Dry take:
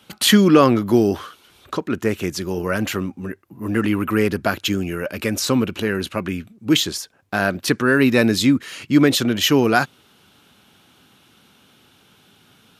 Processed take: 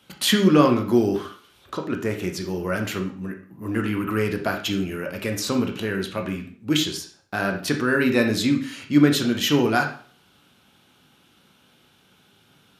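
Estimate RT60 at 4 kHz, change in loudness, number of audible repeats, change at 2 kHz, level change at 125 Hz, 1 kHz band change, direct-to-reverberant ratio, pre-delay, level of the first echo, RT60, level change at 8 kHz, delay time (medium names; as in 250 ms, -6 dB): 0.45 s, -3.5 dB, no echo, -3.5 dB, -3.0 dB, -4.0 dB, 3.5 dB, 7 ms, no echo, 0.45 s, -5.0 dB, no echo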